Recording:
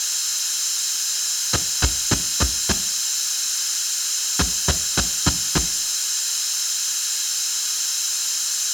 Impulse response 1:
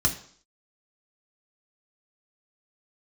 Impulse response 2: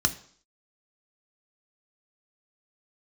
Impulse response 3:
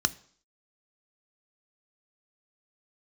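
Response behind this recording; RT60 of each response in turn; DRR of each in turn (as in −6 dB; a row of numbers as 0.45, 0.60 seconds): 3; 0.55, 0.55, 0.55 seconds; −0.5, 6.0, 12.0 decibels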